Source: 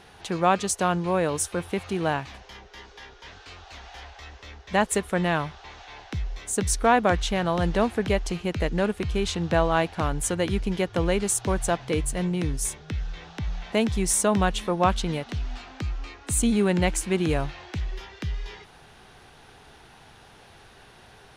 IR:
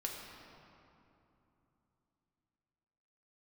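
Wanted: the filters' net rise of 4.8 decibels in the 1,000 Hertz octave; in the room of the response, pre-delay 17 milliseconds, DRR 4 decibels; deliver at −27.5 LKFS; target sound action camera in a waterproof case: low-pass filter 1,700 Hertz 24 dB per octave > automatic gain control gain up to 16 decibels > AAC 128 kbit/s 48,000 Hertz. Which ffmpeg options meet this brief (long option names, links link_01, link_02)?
-filter_complex "[0:a]equalizer=frequency=1000:width_type=o:gain=6.5,asplit=2[link_01][link_02];[1:a]atrim=start_sample=2205,adelay=17[link_03];[link_02][link_03]afir=irnorm=-1:irlink=0,volume=-4.5dB[link_04];[link_01][link_04]amix=inputs=2:normalize=0,lowpass=frequency=1700:width=0.5412,lowpass=frequency=1700:width=1.3066,dynaudnorm=maxgain=16dB,volume=-4.5dB" -ar 48000 -c:a aac -b:a 128k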